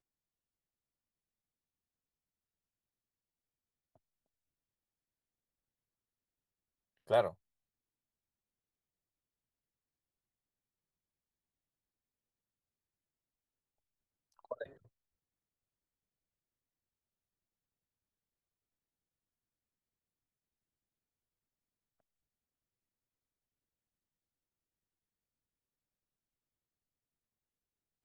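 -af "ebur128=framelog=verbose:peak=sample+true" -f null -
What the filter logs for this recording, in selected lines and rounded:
Integrated loudness:
  I:         -35.2 LUFS
  Threshold: -47.3 LUFS
Loudness range:
  LRA:        14.2 LU
  Threshold: -64.1 LUFS
  LRA low:   -55.3 LUFS
  LRA high:  -41.1 LUFS
Sample peak:
  Peak:      -16.9 dBFS
True peak:
  Peak:      -16.9 dBFS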